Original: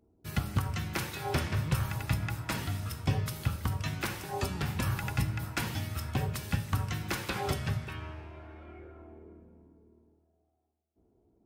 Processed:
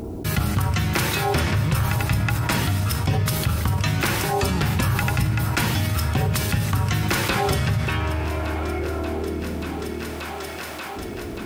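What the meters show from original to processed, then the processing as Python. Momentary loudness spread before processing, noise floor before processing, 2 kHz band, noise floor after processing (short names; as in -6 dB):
16 LU, -73 dBFS, +12.5 dB, -32 dBFS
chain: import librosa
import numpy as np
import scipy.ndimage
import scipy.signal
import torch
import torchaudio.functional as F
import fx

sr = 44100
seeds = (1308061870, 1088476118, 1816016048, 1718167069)

p1 = x + fx.echo_thinned(x, sr, ms=583, feedback_pct=68, hz=150.0, wet_db=-22.0, dry=0)
p2 = fx.env_flatten(p1, sr, amount_pct=70)
y = p2 * librosa.db_to_amplitude(5.5)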